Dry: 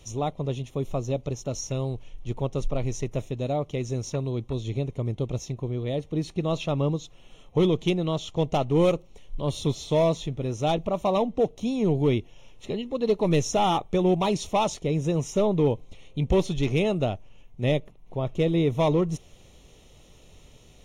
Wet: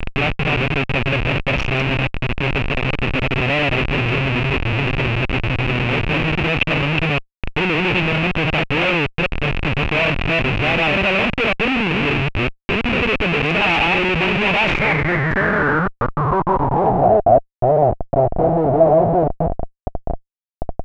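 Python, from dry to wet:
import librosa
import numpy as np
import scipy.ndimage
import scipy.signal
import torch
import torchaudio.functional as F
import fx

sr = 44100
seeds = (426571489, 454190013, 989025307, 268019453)

y = fx.reverse_delay(x, sr, ms=189, wet_db=0.0)
y = fx.dmg_crackle(y, sr, seeds[0], per_s=230.0, level_db=-34.0)
y = fx.schmitt(y, sr, flips_db=-29.0)
y = fx.filter_sweep_lowpass(y, sr, from_hz=2600.0, to_hz=690.0, start_s=14.63, end_s=17.2, q=7.5)
y = y * librosa.db_to_amplitude(4.0)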